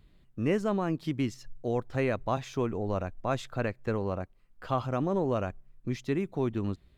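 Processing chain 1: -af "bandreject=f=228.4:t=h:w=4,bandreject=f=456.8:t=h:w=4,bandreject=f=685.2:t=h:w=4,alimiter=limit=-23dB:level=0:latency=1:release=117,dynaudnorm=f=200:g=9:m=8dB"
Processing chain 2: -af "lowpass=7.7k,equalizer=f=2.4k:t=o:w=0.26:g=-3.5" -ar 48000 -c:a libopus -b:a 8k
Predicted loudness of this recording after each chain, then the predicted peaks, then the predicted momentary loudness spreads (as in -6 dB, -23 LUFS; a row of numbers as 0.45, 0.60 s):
-28.5, -32.5 LUFS; -15.0, -16.0 dBFS; 8, 9 LU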